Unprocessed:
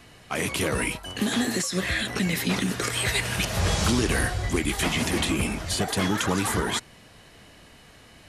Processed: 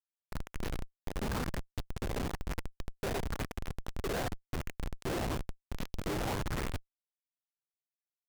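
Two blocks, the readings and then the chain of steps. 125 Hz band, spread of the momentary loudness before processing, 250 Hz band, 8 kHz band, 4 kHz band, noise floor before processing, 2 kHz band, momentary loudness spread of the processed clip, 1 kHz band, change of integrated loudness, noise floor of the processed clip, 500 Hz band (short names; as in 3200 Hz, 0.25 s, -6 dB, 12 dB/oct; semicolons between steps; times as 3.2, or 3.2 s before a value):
-11.0 dB, 4 LU, -14.0 dB, -19.5 dB, -18.5 dB, -51 dBFS, -16.5 dB, 9 LU, -10.5 dB, -13.5 dB, under -85 dBFS, -10.0 dB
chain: median filter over 41 samples; low shelf 120 Hz +11.5 dB; AGC gain up to 7 dB; LFO high-pass saw up 0.99 Hz 460–6200 Hz; Schmitt trigger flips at -27.5 dBFS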